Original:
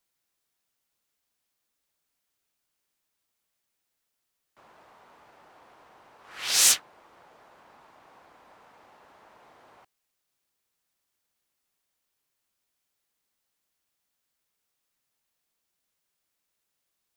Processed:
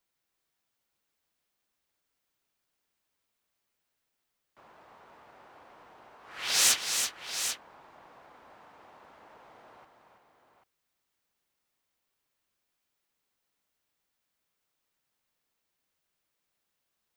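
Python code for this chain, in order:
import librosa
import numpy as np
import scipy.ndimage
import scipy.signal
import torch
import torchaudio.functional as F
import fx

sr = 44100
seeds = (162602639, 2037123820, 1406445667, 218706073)

y = fx.peak_eq(x, sr, hz=11000.0, db=-5.5, octaves=2.1)
y = fx.echo_multitap(y, sr, ms=(232, 330, 355, 790), db=(-19.5, -7.0, -18.5, -9.0))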